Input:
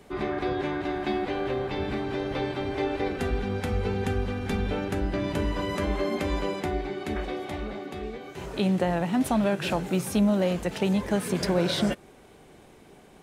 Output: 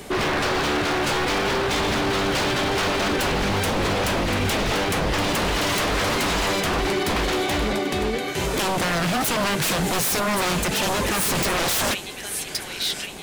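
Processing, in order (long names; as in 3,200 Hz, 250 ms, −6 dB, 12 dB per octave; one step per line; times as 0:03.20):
delay with a high-pass on its return 1,120 ms, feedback 48%, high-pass 1,800 Hz, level −11 dB
in parallel at −1.5 dB: brickwall limiter −21.5 dBFS, peak gain reduction 9 dB
on the sum: high-shelf EQ 2,700 Hz +8.5 dB
wave folding −24.5 dBFS
level +7 dB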